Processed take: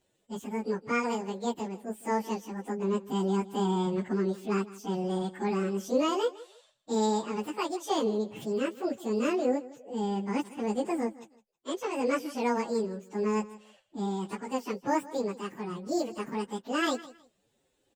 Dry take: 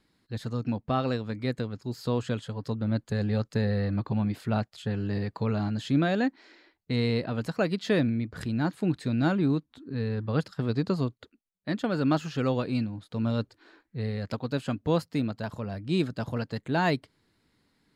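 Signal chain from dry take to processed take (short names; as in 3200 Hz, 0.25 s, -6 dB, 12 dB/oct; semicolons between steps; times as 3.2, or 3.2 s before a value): pitch shift by moving bins +10.5 st; feedback echo 0.16 s, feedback 23%, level -18.5 dB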